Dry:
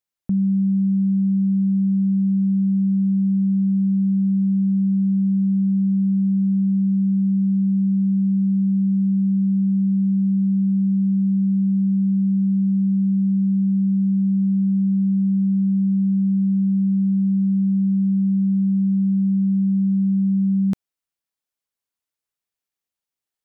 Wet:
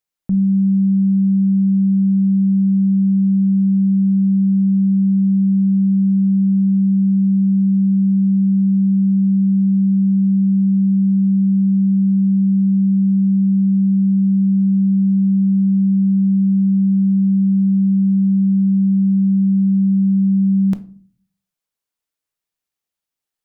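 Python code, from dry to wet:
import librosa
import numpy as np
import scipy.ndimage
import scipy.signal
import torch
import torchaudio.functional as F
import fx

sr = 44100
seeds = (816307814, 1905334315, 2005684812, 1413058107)

y = fx.room_shoebox(x, sr, seeds[0], volume_m3=330.0, walls='furnished', distance_m=0.54)
y = y * 10.0 ** (2.0 / 20.0)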